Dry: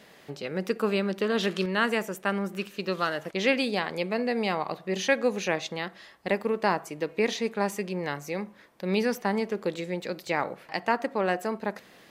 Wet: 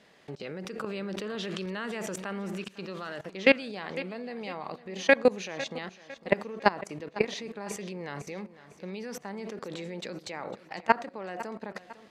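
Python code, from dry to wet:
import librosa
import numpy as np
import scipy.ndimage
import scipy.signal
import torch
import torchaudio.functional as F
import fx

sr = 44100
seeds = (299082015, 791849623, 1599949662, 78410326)

y = scipy.signal.sosfilt(scipy.signal.butter(2, 8100.0, 'lowpass', fs=sr, output='sos'), x)
y = fx.level_steps(y, sr, step_db=22)
y = fx.echo_feedback(y, sr, ms=503, feedback_pct=40, wet_db=-16.5)
y = fx.env_flatten(y, sr, amount_pct=70, at=(0.78, 2.62))
y = y * librosa.db_to_amplitude(6.0)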